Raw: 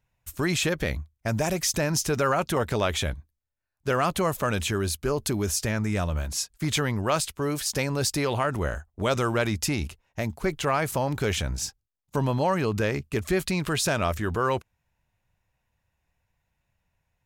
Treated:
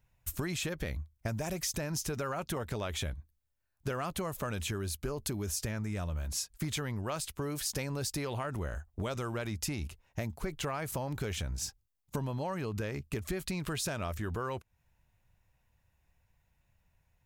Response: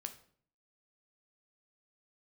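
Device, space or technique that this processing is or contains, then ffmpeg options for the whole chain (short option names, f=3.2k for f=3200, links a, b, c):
ASMR close-microphone chain: -af "lowshelf=f=120:g=6,acompressor=threshold=-33dB:ratio=6,highshelf=f=12k:g=6"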